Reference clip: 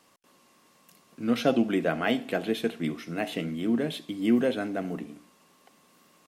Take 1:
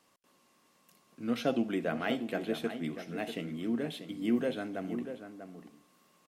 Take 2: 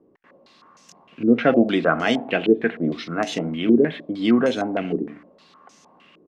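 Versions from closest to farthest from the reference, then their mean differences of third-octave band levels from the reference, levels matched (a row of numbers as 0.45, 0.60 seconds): 1, 2; 2.0, 6.0 decibels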